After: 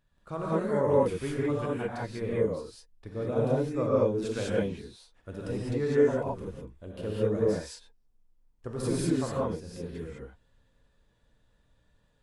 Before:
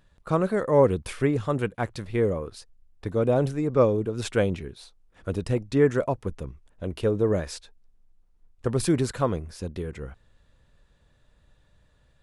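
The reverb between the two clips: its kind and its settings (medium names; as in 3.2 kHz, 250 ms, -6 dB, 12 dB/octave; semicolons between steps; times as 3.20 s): gated-style reverb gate 230 ms rising, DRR -6.5 dB; trim -12.5 dB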